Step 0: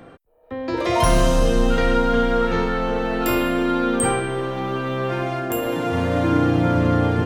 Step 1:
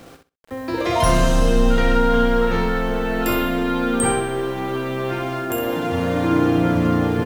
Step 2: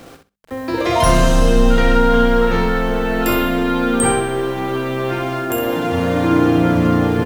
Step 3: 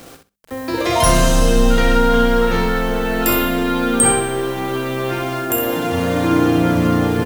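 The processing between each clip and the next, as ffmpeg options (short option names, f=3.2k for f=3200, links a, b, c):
-af "acrusher=bits=7:mix=0:aa=0.000001,aecho=1:1:64|128|192:0.447|0.0715|0.0114"
-af "bandreject=f=50:t=h:w=6,bandreject=f=100:t=h:w=6,bandreject=f=150:t=h:w=6,bandreject=f=200:t=h:w=6,volume=3.5dB"
-af "highshelf=f=4.8k:g=9,volume=-1dB"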